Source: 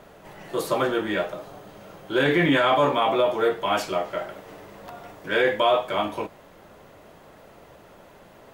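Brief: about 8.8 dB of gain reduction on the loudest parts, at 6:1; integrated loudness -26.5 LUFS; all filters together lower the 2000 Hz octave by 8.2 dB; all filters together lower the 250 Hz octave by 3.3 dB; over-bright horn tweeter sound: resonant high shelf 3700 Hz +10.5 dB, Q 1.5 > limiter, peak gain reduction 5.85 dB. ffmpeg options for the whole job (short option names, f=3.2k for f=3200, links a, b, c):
-af "equalizer=f=250:t=o:g=-4.5,equalizer=f=2k:t=o:g=-8.5,acompressor=threshold=-27dB:ratio=6,highshelf=f=3.7k:t=q:w=1.5:g=10.5,volume=7.5dB,alimiter=limit=-15.5dB:level=0:latency=1"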